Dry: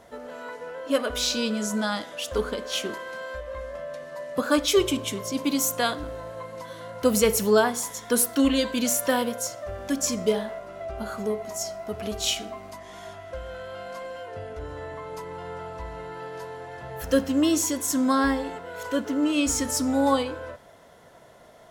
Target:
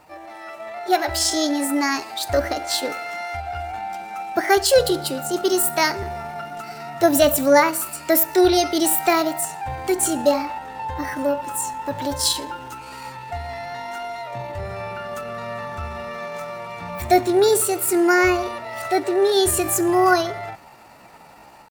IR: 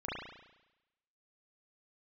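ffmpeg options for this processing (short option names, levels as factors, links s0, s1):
-af "asetrate=58866,aresample=44100,atempo=0.749154,dynaudnorm=f=450:g=3:m=2"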